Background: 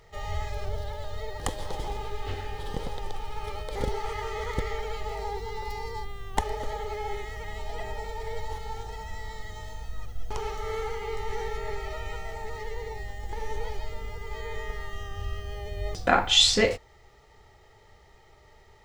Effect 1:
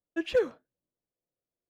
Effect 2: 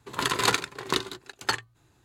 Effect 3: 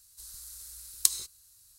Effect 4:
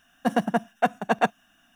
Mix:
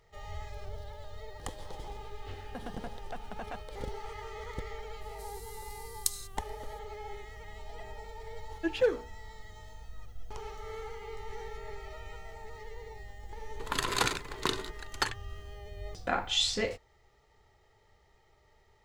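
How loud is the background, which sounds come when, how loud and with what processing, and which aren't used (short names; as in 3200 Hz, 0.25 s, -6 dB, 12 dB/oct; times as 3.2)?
background -9.5 dB
2.3 add 4 -5.5 dB + compressor, threshold -33 dBFS
5.01 add 3 -7 dB
8.47 add 1 -0.5 dB + notches 60/120/180/240/300/360/420/480 Hz
13.53 add 2 -9.5 dB + transient shaper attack +6 dB, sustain +10 dB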